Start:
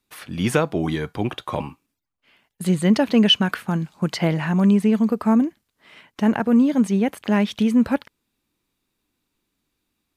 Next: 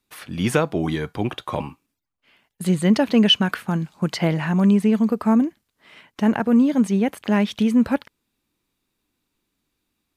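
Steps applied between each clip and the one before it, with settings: no audible change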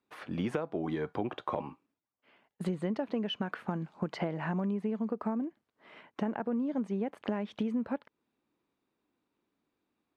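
band-pass filter 560 Hz, Q 0.61; compression 12:1, threshold -29 dBFS, peak gain reduction 15 dB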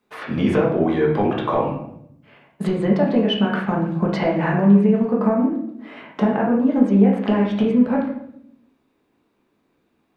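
reverberation RT60 0.75 s, pre-delay 5 ms, DRR -4 dB; trim +9 dB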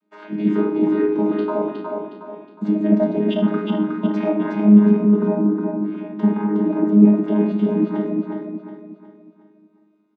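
vocoder on a held chord bare fifth, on G#3; feedback delay 364 ms, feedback 40%, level -4 dB; trim +2 dB

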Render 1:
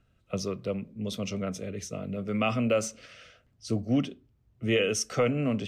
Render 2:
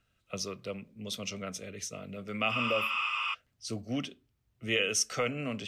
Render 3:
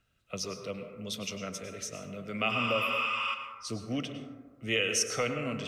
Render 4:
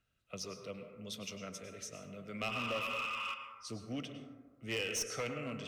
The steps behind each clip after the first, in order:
spectral replace 2.54–3.31 s, 810–9700 Hz before; tilt shelf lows -6 dB; trim -3.5 dB
plate-style reverb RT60 1.4 s, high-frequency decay 0.3×, pre-delay 90 ms, DRR 6 dB
one-sided clip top -27.5 dBFS; trim -7 dB

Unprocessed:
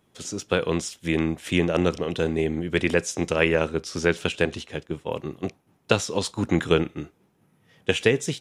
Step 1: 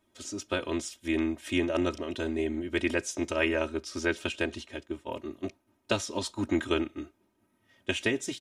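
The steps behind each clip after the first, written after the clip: comb 3.2 ms, depth 99%; trim -8.5 dB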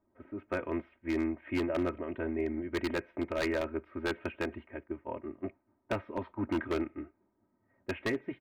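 level-controlled noise filter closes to 1.1 kHz, open at -26.5 dBFS; elliptic low-pass 2.2 kHz, stop band 70 dB; wavefolder -21.5 dBFS; trim -2 dB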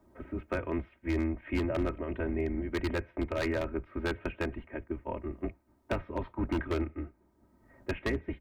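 octave divider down 2 oct, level 0 dB; three bands compressed up and down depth 40%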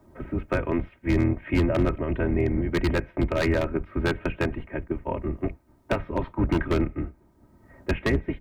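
octave divider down 1 oct, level -2 dB; trim +7 dB

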